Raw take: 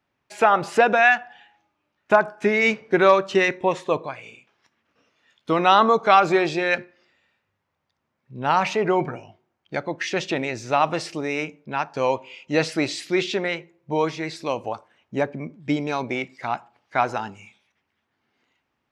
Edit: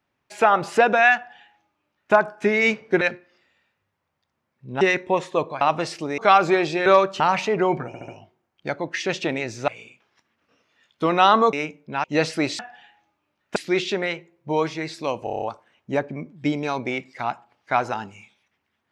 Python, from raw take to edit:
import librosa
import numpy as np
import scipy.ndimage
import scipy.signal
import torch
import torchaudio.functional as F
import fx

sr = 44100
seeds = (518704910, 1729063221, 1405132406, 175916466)

y = fx.edit(x, sr, fx.duplicate(start_s=1.16, length_s=0.97, to_s=12.98),
    fx.swap(start_s=3.01, length_s=0.34, other_s=6.68, other_length_s=1.8),
    fx.swap(start_s=4.15, length_s=1.85, other_s=10.75, other_length_s=0.57),
    fx.stutter(start_s=9.15, slice_s=0.07, count=4),
    fx.cut(start_s=11.83, length_s=0.6),
    fx.stutter(start_s=14.66, slice_s=0.03, count=7), tone=tone)